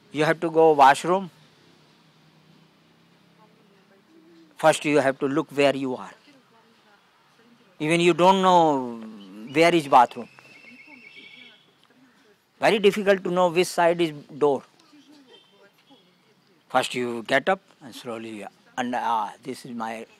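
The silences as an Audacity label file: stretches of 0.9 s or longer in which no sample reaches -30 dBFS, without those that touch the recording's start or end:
1.260000	4.600000	silence
6.080000	7.810000	silence
10.390000	12.610000	silence
14.580000	16.740000	silence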